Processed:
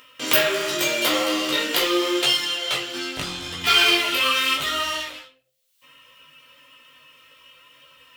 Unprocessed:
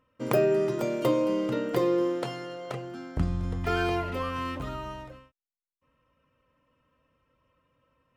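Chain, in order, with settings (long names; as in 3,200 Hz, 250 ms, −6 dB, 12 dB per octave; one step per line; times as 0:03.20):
leveller curve on the samples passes 3
spectral tilt +4.5 dB per octave
hum removal 57.73 Hz, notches 14
on a send at −2 dB: convolution reverb RT60 0.30 s, pre-delay 7 ms
on the sum: multi-voice chorus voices 2, 0.82 Hz, delay 16 ms, depth 3.7 ms
upward compression, threshold −35 dBFS
parametric band 3,200 Hz +12 dB 1.1 octaves
level −2 dB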